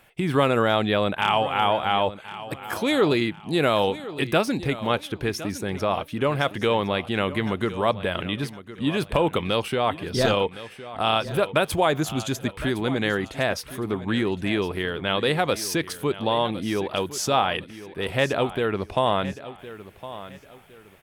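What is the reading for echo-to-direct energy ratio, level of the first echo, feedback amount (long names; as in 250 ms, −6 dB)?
−14.5 dB, −15.0 dB, 30%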